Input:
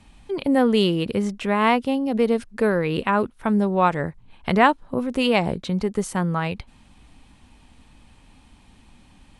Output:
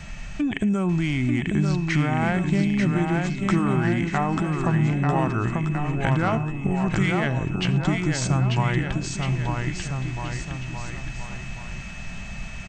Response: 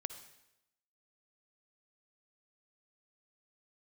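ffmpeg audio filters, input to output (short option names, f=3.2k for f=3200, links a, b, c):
-filter_complex "[0:a]equalizer=f=650:w=1.4:g=-10,acontrast=78,alimiter=limit=-10dB:level=0:latency=1,acompressor=threshold=-34dB:ratio=3,aeval=exprs='val(0)+0.00141*sin(2*PI*3500*n/s)':c=same,aecho=1:1:660|1188|1610|1948|2219:0.631|0.398|0.251|0.158|0.1,asplit=2[a][b];[1:a]atrim=start_sample=2205,atrim=end_sample=3969[c];[b][c]afir=irnorm=-1:irlink=0,volume=2.5dB[d];[a][d]amix=inputs=2:normalize=0,asetrate=32667,aresample=44100,volume=2dB"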